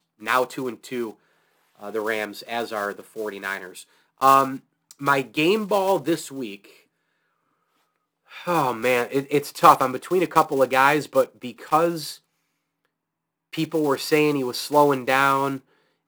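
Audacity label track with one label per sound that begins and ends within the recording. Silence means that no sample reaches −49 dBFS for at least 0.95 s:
8.280000	12.180000	sound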